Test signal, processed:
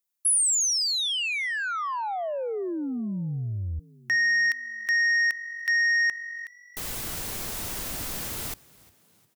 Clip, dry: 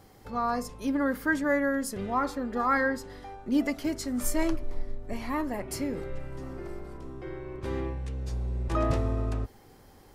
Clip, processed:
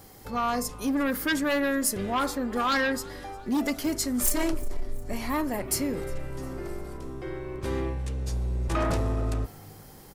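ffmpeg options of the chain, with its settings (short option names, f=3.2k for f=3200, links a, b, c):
-filter_complex "[0:a]aeval=exprs='0.224*sin(PI/2*2.51*val(0)/0.224)':c=same,crystalizer=i=1.5:c=0,asplit=4[a][b][c][d];[b]adelay=355,afreqshift=46,volume=-23.5dB[e];[c]adelay=710,afreqshift=92,volume=-29.9dB[f];[d]adelay=1065,afreqshift=138,volume=-36.3dB[g];[a][e][f][g]amix=inputs=4:normalize=0,volume=-8.5dB"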